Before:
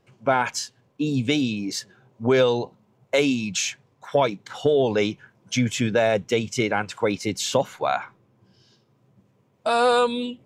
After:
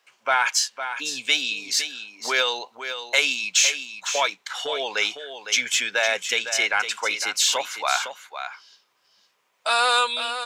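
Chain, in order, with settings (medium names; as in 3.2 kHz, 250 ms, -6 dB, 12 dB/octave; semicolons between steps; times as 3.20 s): high-pass 1.4 kHz 12 dB/octave; in parallel at -10.5 dB: saturation -25.5 dBFS, distortion -11 dB; on the sum: delay 507 ms -9.5 dB; trim +6 dB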